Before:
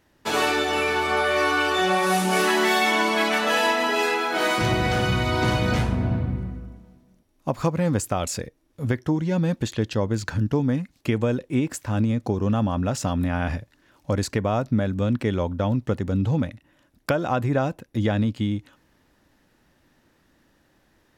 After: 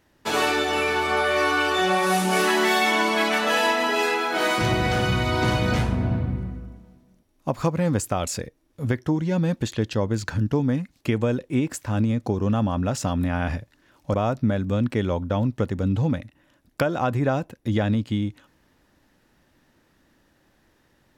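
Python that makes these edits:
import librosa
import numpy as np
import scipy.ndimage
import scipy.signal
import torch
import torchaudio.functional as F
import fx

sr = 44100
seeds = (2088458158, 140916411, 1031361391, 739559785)

y = fx.edit(x, sr, fx.cut(start_s=14.14, length_s=0.29), tone=tone)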